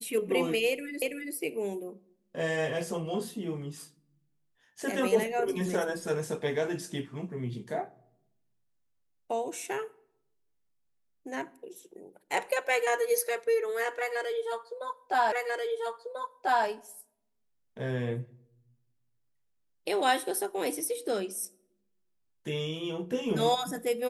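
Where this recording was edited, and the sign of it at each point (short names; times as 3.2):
1.02 repeat of the last 0.33 s
15.32 repeat of the last 1.34 s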